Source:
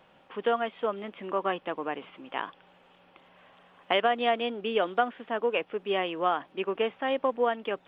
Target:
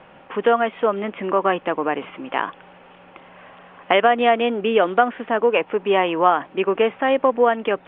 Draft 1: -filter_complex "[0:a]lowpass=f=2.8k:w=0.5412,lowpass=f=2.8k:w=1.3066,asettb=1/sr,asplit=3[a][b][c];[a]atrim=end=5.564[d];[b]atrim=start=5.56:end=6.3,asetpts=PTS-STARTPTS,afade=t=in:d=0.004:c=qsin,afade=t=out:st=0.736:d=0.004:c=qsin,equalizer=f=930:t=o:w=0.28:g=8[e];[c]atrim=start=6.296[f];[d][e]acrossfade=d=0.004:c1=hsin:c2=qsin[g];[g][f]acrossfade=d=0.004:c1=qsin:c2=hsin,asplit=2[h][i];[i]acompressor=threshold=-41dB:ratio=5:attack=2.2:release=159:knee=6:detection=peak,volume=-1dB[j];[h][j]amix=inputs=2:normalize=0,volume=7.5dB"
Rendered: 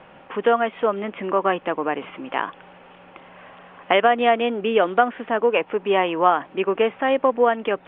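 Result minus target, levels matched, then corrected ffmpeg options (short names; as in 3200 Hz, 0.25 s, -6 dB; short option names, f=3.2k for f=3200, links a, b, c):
compressor: peak gain reduction +7.5 dB
-filter_complex "[0:a]lowpass=f=2.8k:w=0.5412,lowpass=f=2.8k:w=1.3066,asettb=1/sr,asplit=3[a][b][c];[a]atrim=end=5.564[d];[b]atrim=start=5.56:end=6.3,asetpts=PTS-STARTPTS,afade=t=in:d=0.004:c=qsin,afade=t=out:st=0.736:d=0.004:c=qsin,equalizer=f=930:t=o:w=0.28:g=8[e];[c]atrim=start=6.296[f];[d][e]acrossfade=d=0.004:c1=hsin:c2=qsin[g];[g][f]acrossfade=d=0.004:c1=qsin:c2=hsin,asplit=2[h][i];[i]acompressor=threshold=-31.5dB:ratio=5:attack=2.2:release=159:knee=6:detection=peak,volume=-1dB[j];[h][j]amix=inputs=2:normalize=0,volume=7.5dB"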